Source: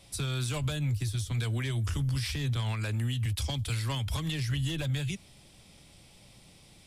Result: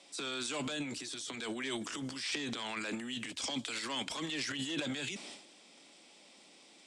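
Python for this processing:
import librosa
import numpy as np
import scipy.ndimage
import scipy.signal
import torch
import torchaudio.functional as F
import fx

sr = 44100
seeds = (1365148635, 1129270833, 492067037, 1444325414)

y = scipy.signal.sosfilt(scipy.signal.ellip(3, 1.0, 40, [260.0, 8000.0], 'bandpass', fs=sr, output='sos'), x)
y = fx.transient(y, sr, attack_db=-5, sustain_db=12)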